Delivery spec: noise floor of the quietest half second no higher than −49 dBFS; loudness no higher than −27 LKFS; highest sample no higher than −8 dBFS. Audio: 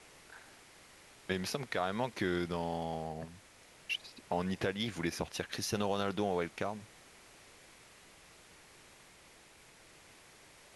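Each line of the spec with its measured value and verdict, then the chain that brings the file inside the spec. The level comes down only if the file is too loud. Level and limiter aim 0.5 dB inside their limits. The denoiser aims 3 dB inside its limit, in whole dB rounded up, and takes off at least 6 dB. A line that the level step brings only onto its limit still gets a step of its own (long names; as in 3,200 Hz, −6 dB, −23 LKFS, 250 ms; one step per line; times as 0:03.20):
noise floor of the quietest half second −59 dBFS: in spec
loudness −36.5 LKFS: in spec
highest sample −18.0 dBFS: in spec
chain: no processing needed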